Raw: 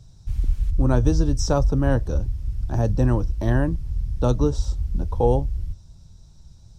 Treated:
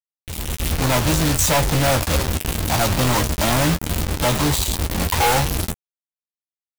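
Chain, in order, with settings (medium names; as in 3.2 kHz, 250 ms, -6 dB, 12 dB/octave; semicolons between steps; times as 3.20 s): in parallel at -11 dB: hard clipper -21 dBFS, distortion -7 dB; on the sum: high-pass 360 Hz 6 dB/octave; static phaser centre 1.5 kHz, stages 6; companded quantiser 2-bit; treble shelf 2.1 kHz +7.5 dB; on a send: early reflections 13 ms -8 dB, 23 ms -15 dB; on the sum: level rider gain up to 12 dB; trim -3.5 dB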